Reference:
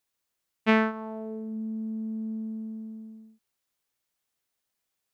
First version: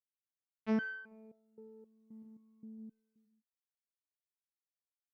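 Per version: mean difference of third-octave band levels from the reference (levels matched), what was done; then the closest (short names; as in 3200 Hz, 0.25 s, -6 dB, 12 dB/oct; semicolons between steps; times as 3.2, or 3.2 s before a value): 4.5 dB: gate with hold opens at -40 dBFS; random-step tremolo 1.8 Hz; on a send: echo 0.134 s -9.5 dB; on the sum: stepped resonator 3.8 Hz 79–700 Hz; gain -1.5 dB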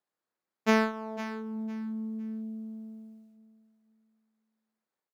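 3.5 dB: median filter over 15 samples; HPF 200 Hz; on a send: feedback echo 0.506 s, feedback 25%, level -13 dB; on the sum: ending taper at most 130 dB/s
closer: second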